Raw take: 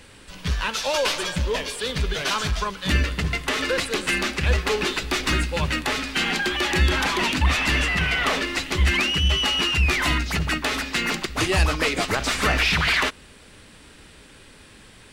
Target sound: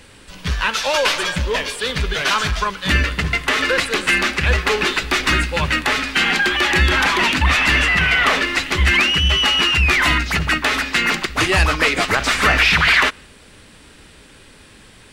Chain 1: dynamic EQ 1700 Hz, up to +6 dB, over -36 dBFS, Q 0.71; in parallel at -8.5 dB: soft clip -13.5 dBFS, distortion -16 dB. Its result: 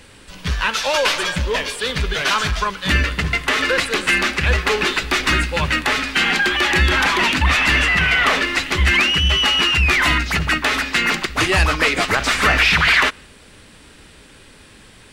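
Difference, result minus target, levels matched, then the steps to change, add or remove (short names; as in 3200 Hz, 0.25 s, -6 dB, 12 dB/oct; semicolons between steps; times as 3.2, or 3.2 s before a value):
soft clip: distortion +9 dB
change: soft clip -7.5 dBFS, distortion -25 dB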